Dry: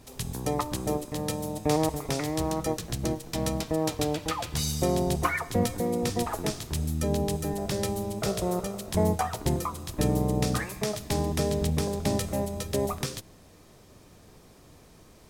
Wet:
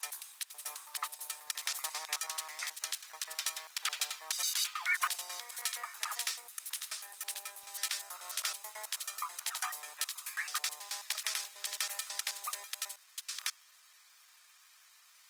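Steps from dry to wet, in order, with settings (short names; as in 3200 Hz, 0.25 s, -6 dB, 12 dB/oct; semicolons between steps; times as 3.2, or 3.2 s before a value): slices in reverse order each 0.108 s, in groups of 5; HPF 1300 Hz 24 dB/oct; Opus 24 kbps 48000 Hz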